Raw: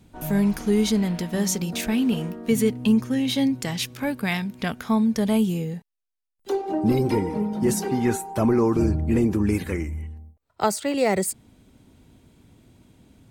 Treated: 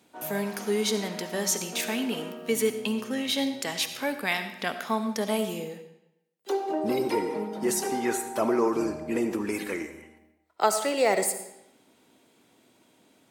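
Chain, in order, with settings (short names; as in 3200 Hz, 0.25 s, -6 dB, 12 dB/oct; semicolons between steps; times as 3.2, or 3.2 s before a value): HPF 400 Hz 12 dB/oct; on a send: reverb RT60 0.85 s, pre-delay 30 ms, DRR 9 dB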